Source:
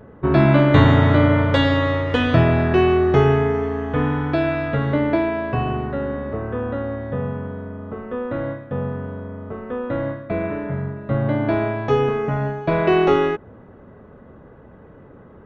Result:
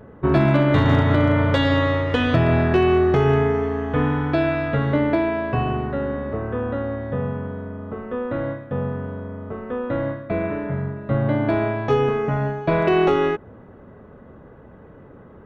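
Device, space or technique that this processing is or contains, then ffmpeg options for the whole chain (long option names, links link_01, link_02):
limiter into clipper: -af "alimiter=limit=-7.5dB:level=0:latency=1:release=164,asoftclip=type=hard:threshold=-9dB"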